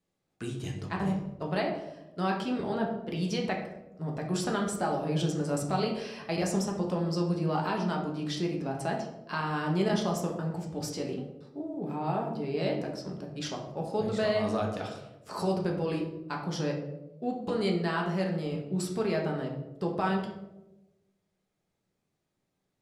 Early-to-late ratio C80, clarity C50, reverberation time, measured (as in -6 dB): 8.5 dB, 6.0 dB, 1.0 s